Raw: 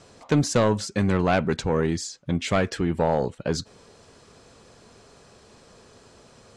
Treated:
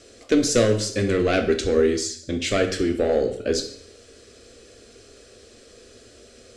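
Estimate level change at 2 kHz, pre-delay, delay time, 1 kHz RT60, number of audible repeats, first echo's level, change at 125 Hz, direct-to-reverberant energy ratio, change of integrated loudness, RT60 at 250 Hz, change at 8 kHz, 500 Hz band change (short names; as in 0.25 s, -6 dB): +2.0 dB, 5 ms, none, 0.60 s, none, none, -4.0 dB, 5.0 dB, +2.5 dB, 0.55 s, +5.5 dB, +4.5 dB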